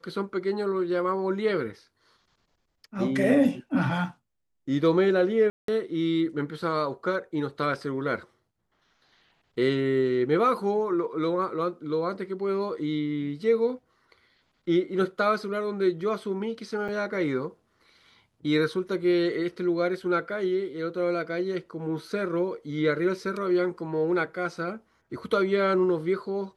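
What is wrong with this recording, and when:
5.50–5.68 s: dropout 183 ms
16.88–16.89 s: dropout 5.9 ms

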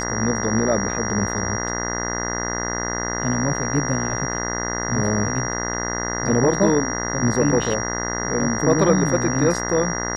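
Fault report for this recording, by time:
buzz 60 Hz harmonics 34 -27 dBFS
whine 5.7 kHz -28 dBFS

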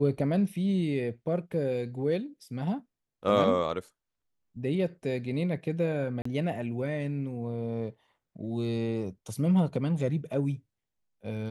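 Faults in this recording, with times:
6.22–6.25 s: dropout 34 ms

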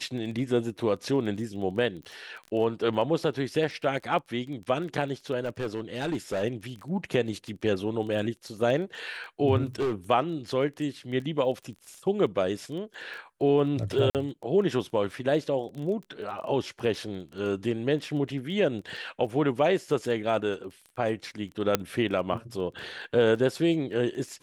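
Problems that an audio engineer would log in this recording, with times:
crackle 14 per s -36 dBFS
2.03 s: pop -32 dBFS
5.41–6.44 s: clipped -25 dBFS
9.80–9.95 s: clipped -23.5 dBFS
14.10–14.15 s: dropout 48 ms
21.75 s: pop -7 dBFS

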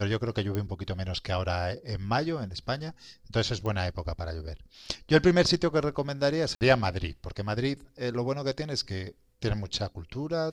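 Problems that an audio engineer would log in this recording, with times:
0.55 s: pop -18 dBFS
3.66 s: pop -22 dBFS
6.55–6.61 s: dropout 59 ms

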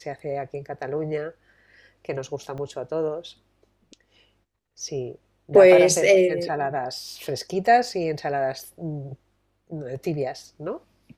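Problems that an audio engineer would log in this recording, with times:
2.58 s: dropout 3.2 ms

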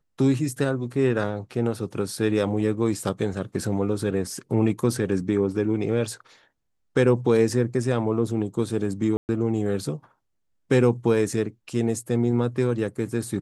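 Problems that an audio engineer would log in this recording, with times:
9.17–9.29 s: dropout 119 ms

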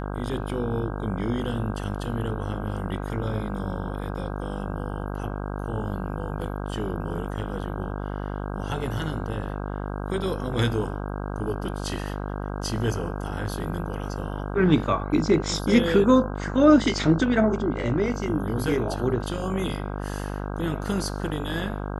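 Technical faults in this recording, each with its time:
buzz 50 Hz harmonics 32 -31 dBFS

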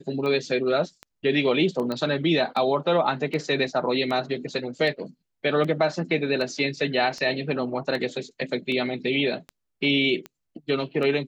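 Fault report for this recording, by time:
tick 78 rpm -21 dBFS
1.92 s: pop -17 dBFS

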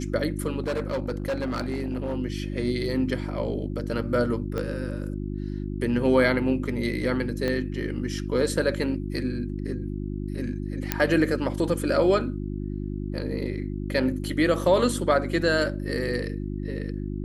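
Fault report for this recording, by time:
hum 50 Hz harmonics 7 -31 dBFS
0.60–2.14 s: clipped -23.5 dBFS
4.58 s: pop -17 dBFS
7.48 s: pop -15 dBFS
10.92 s: pop -6 dBFS

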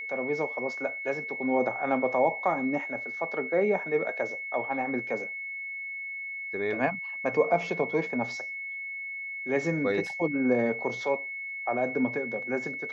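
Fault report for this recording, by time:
whine 2.2 kHz -34 dBFS

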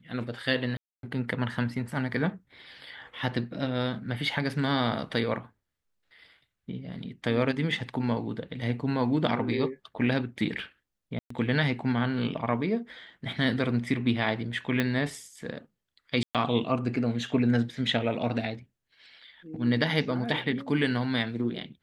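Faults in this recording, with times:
0.77–1.03 s: dropout 262 ms
11.19–11.30 s: dropout 114 ms
14.80 s: pop -13 dBFS
16.23–16.35 s: dropout 117 ms

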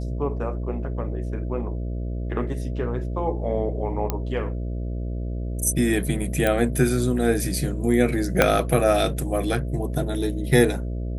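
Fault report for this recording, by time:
buzz 60 Hz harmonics 11 -28 dBFS
4.10 s: pop -10 dBFS
6.47 s: pop -9 dBFS
8.42 s: pop -1 dBFS

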